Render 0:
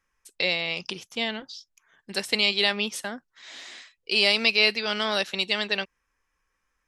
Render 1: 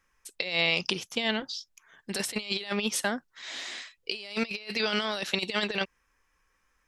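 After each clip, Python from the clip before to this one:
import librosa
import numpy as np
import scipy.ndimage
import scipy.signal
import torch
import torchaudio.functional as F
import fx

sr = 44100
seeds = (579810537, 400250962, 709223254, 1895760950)

y = fx.over_compress(x, sr, threshold_db=-29.0, ratio=-0.5)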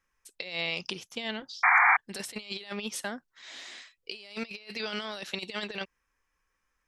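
y = fx.spec_paint(x, sr, seeds[0], shape='noise', start_s=1.63, length_s=0.34, low_hz=700.0, high_hz=2400.0, level_db=-14.0)
y = y * librosa.db_to_amplitude(-6.5)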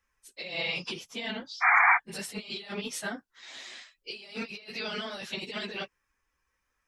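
y = fx.phase_scramble(x, sr, seeds[1], window_ms=50)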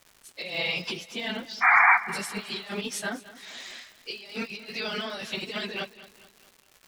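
y = fx.dmg_crackle(x, sr, seeds[2], per_s=300.0, level_db=-44.0)
y = fx.echo_feedback(y, sr, ms=216, feedback_pct=46, wet_db=-17)
y = y * librosa.db_to_amplitude(3.0)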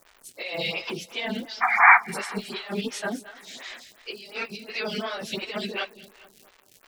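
y = fx.stagger_phaser(x, sr, hz=2.8)
y = y * librosa.db_to_amplitude(5.5)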